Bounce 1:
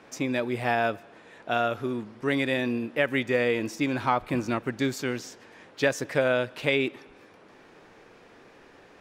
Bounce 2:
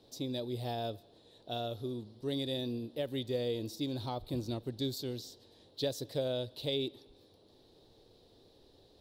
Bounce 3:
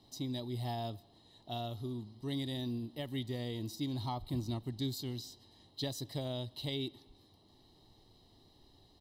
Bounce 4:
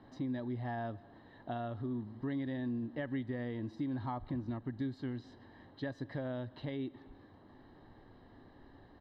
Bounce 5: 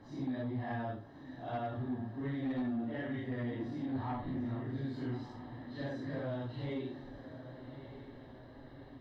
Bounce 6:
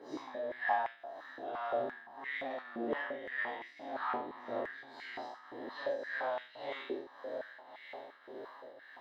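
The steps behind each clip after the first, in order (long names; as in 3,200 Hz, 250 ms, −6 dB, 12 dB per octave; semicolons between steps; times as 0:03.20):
drawn EQ curve 100 Hz 0 dB, 180 Hz −11 dB, 390 Hz −8 dB, 570 Hz −10 dB, 840 Hz −15 dB, 1,400 Hz −27 dB, 2,400 Hz −25 dB, 3,900 Hz +4 dB, 6,400 Hz −12 dB, 13,000 Hz 0 dB
comb filter 1 ms, depth 72%; level −2 dB
downward compressor 4 to 1, threshold −44 dBFS, peak gain reduction 10.5 dB; low-pass with resonance 1,600 Hz, resonance Q 8.4; hollow resonant body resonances 260/530 Hz, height 6 dB, ringing for 30 ms; level +4.5 dB
random phases in long frames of 200 ms; feedback delay with all-pass diffusion 1,197 ms, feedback 51%, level −12 dB; sine wavefolder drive 4 dB, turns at −25 dBFS; level −6 dB
peak hold with a decay on every bin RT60 0.74 s; shaped tremolo triangle 1.8 Hz, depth 70%; high-pass on a step sequencer 5.8 Hz 420–2,100 Hz; level +3.5 dB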